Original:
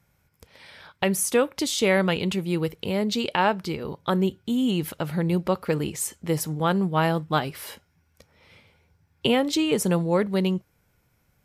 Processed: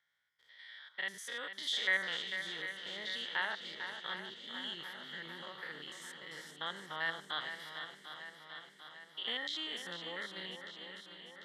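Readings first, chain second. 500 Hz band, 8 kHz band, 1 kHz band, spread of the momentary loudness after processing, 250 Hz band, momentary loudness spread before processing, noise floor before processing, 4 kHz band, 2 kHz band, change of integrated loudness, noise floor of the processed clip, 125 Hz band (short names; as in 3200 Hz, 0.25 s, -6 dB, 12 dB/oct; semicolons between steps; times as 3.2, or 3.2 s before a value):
-24.5 dB, -21.0 dB, -17.5 dB, 13 LU, -30.0 dB, 7 LU, -68 dBFS, -6.0 dB, -5.0 dB, -15.0 dB, -63 dBFS, -32.5 dB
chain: stepped spectrum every 0.1 s; double band-pass 2500 Hz, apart 0.82 oct; swung echo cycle 0.746 s, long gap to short 1.5:1, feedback 59%, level -9 dB; gain +2 dB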